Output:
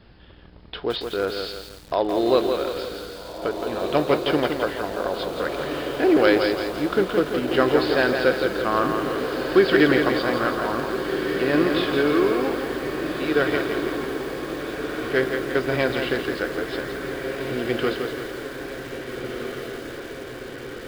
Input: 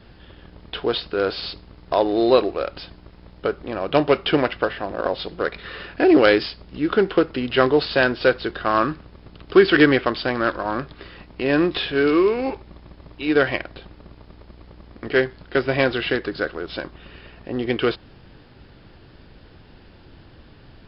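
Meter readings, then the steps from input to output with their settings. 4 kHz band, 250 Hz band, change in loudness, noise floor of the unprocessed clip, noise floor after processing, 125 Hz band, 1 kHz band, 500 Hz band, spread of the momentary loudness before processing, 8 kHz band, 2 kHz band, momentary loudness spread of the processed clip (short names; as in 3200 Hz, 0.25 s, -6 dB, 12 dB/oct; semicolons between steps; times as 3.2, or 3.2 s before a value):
-1.5 dB, -1.0 dB, -2.5 dB, -48 dBFS, -39 dBFS, -1.5 dB, -1.0 dB, -1.0 dB, 15 LU, n/a, -1.5 dB, 13 LU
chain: dynamic EQ 2700 Hz, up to -4 dB, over -41 dBFS, Q 5.6; on a send: diffused feedback echo 1.671 s, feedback 67%, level -7 dB; on the sum: lo-fi delay 0.168 s, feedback 55%, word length 6-bit, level -5.5 dB; gain -3.5 dB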